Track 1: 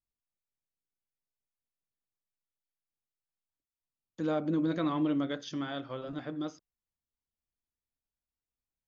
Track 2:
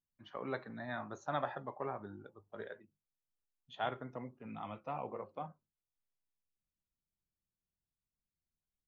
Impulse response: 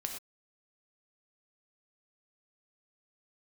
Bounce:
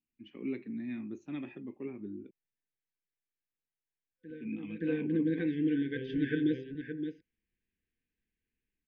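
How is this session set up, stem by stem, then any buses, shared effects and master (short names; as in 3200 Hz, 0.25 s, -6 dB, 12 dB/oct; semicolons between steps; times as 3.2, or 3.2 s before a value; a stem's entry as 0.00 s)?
0.0 dB, 0.05 s, no send, echo send -8 dB, LPF 2500 Hz 24 dB/oct; FFT band-reject 510–1500 Hz; AGC gain up to 11 dB; auto duck -22 dB, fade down 1.80 s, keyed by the second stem
+1.5 dB, 0.00 s, muted 2.31–4.3, no send, no echo send, EQ curve 150 Hz 0 dB, 220 Hz +13 dB, 350 Hz +11 dB, 620 Hz -22 dB, 1500 Hz -20 dB, 2500 Hz +8 dB, 3700 Hz -12 dB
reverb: off
echo: echo 0.57 s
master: low shelf 450 Hz -5 dB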